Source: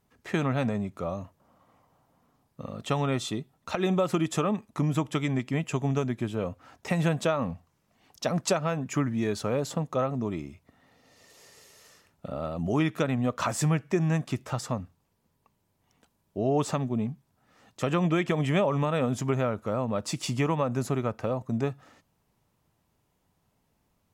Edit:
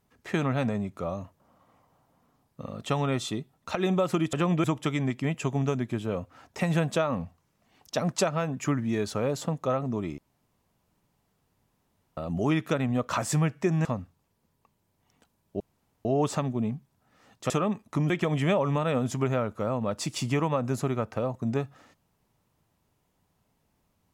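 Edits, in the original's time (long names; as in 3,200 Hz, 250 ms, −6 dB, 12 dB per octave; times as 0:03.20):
0:04.33–0:04.93: swap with 0:17.86–0:18.17
0:10.47–0:12.46: fill with room tone
0:14.14–0:14.66: remove
0:16.41: splice in room tone 0.45 s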